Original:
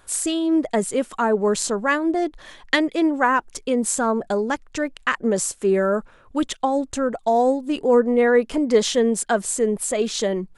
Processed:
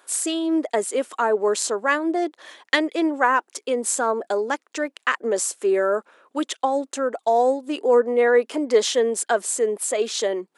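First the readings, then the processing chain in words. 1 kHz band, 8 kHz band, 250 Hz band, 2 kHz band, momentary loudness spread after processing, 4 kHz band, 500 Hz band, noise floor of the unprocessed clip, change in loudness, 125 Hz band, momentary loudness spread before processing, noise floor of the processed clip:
0.0 dB, 0.0 dB, −5.0 dB, 0.0 dB, 8 LU, 0.0 dB, 0.0 dB, −52 dBFS, −1.0 dB, can't be measured, 7 LU, −74 dBFS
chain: high-pass filter 310 Hz 24 dB per octave

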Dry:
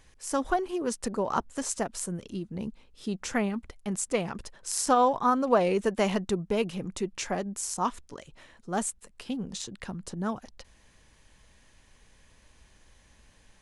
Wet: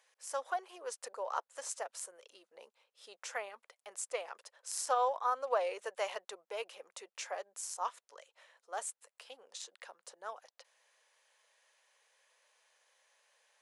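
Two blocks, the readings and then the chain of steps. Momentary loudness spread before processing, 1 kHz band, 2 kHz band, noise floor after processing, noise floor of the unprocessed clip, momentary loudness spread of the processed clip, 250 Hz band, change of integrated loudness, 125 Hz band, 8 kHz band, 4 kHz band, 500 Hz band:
14 LU, −8.0 dB, −7.5 dB, below −85 dBFS, −61 dBFS, 21 LU, below −30 dB, −9.5 dB, below −40 dB, −8.5 dB, −8.5 dB, −10.0 dB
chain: Chebyshev high-pass filter 510 Hz, order 4
level −7.5 dB

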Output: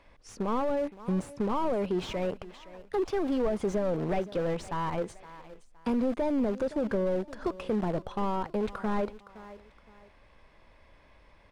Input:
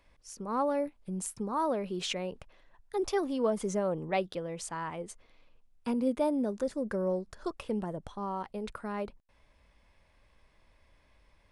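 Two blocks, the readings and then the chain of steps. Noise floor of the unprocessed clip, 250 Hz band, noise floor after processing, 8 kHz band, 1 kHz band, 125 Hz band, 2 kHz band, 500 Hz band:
−67 dBFS, +3.5 dB, −59 dBFS, −8.5 dB, +1.5 dB, +5.5 dB, +1.0 dB, +2.5 dB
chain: in parallel at −5 dB: bit reduction 6 bits
on the sum: high-shelf EQ 3,500 Hz +11 dB
downward compressor, threshold −29 dBFS, peak gain reduction 9.5 dB
on a send: repeating echo 516 ms, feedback 31%, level −21.5 dB
on the sum: mid-hump overdrive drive 25 dB, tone 2,500 Hz, clips at −13.5 dBFS
spectral tilt −3.5 dB per octave
level −9 dB

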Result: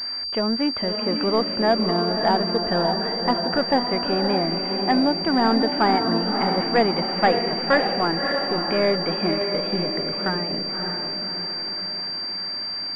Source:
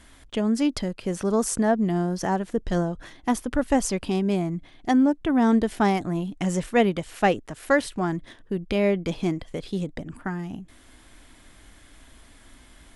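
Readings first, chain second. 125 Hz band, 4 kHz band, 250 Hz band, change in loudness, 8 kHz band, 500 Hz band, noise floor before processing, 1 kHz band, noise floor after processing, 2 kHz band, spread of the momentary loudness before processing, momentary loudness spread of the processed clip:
−1.0 dB, +18.0 dB, 0.0 dB, +3.0 dB, below −20 dB, +4.0 dB, −52 dBFS, +6.0 dB, −29 dBFS, +5.0 dB, 11 LU, 6 LU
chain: high-pass filter 1,500 Hz 6 dB per octave
power curve on the samples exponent 0.7
high-frequency loss of the air 440 metres
feedback delay with all-pass diffusion 585 ms, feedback 54%, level −4.5 dB
switching amplifier with a slow clock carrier 4,700 Hz
level +8 dB

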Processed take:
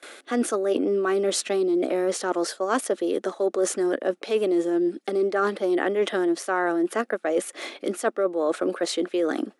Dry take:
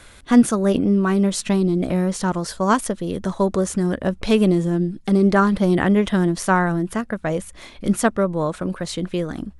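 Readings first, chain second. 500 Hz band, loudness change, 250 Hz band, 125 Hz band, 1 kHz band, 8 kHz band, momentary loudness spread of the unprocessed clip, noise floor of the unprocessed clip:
−0.5 dB, −5.0 dB, −8.0 dB, −22.5 dB, −5.5 dB, −2.0 dB, 9 LU, −45 dBFS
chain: Butterworth high-pass 310 Hz 36 dB per octave
notch filter 980 Hz, Q 5.1
noise gate with hold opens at −38 dBFS
spectral tilt −1.5 dB per octave
reversed playback
downward compressor 6 to 1, threshold −29 dBFS, peak gain reduction 15.5 dB
reversed playback
level +8 dB

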